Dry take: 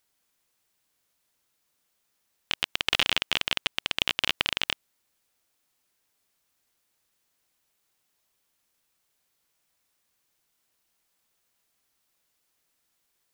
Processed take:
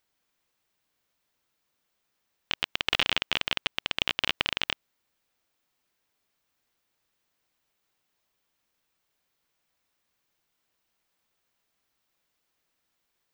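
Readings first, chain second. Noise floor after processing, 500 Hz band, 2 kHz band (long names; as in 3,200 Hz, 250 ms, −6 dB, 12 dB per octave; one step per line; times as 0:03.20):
−79 dBFS, 0.0 dB, −1.0 dB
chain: parametric band 11,000 Hz −9 dB 1.5 octaves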